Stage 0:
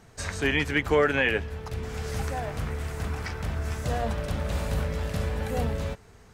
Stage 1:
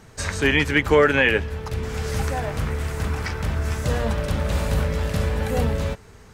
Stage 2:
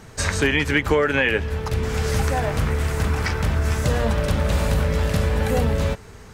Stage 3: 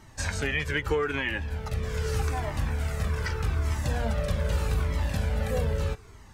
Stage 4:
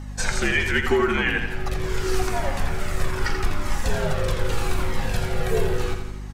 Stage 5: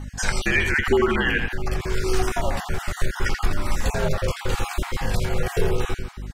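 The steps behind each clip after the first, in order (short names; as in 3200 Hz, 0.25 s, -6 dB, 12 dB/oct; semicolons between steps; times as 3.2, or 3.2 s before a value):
notch 710 Hz, Q 12; gain +6 dB
compressor 5:1, threshold -20 dBFS, peak gain reduction 8.5 dB; gain +4.5 dB
cascading flanger falling 0.81 Hz; gain -4 dB
feedback echo 84 ms, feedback 54%, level -7.5 dB; frequency shift -64 Hz; hum 50 Hz, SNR 12 dB; gain +6 dB
random spectral dropouts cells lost 24%; gain +1.5 dB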